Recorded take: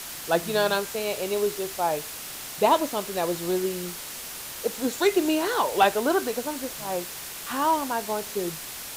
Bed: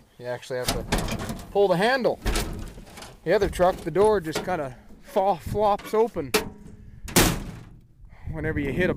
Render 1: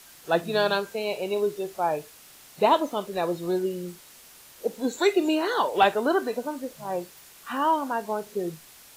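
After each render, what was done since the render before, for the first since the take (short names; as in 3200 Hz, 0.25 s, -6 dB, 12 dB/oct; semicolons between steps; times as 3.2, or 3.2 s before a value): noise print and reduce 13 dB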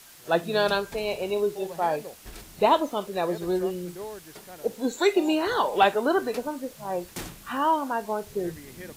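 add bed -18.5 dB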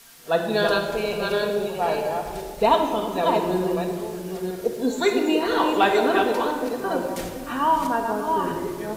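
reverse delay 0.501 s, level -4.5 dB; shoebox room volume 3000 m³, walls mixed, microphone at 1.7 m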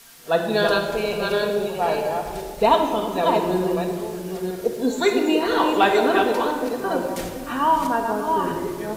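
gain +1.5 dB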